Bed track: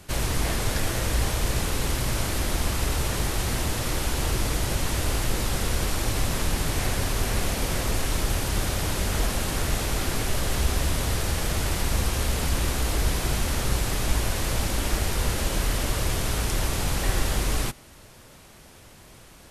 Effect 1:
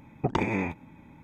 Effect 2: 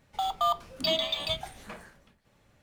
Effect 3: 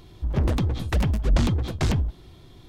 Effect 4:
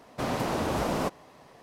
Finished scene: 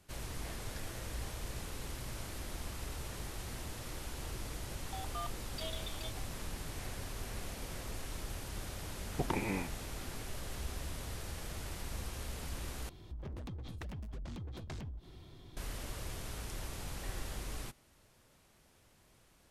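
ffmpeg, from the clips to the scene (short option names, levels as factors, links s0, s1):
-filter_complex "[0:a]volume=0.141[s0];[3:a]acompressor=threshold=0.0158:ratio=6:attack=3.2:release=140:knee=1:detection=peak[s1];[s0]asplit=2[s2][s3];[s2]atrim=end=12.894[s4];[s1]atrim=end=2.68,asetpts=PTS-STARTPTS,volume=0.501[s5];[s3]atrim=start=15.566[s6];[2:a]atrim=end=2.62,asetpts=PTS-STARTPTS,volume=0.15,afade=t=in:d=0.004:c=hsin,afade=t=out:st=2.616:d=0.004:c=hsin,adelay=4740[s7];[1:a]atrim=end=1.23,asetpts=PTS-STARTPTS,volume=0.376,afade=t=in:d=0.004:c=hsin,afade=t=out:st=1.226:d=0.004:c=hsin,adelay=8950[s8];[s4][s5]acrossfade=d=0.004:c1=hsin:c2=hsin[s9];[s9][s6]acrossfade=d=0.004:c1=hsin:c2=hsin[s10];[s10][s7][s8]amix=inputs=3:normalize=0"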